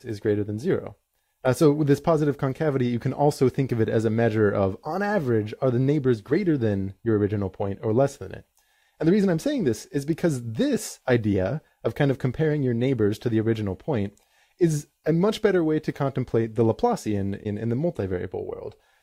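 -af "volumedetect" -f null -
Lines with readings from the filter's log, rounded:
mean_volume: -24.0 dB
max_volume: -6.8 dB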